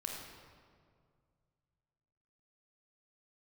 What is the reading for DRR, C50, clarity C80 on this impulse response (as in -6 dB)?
-0.5 dB, 1.0 dB, 2.5 dB